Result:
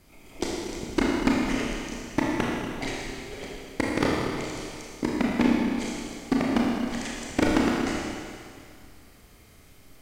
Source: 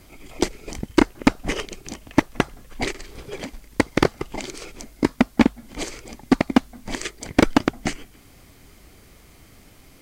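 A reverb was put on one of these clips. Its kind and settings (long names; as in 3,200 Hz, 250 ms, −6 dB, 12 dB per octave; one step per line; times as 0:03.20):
four-comb reverb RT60 2.2 s, combs from 26 ms, DRR −4 dB
level −9 dB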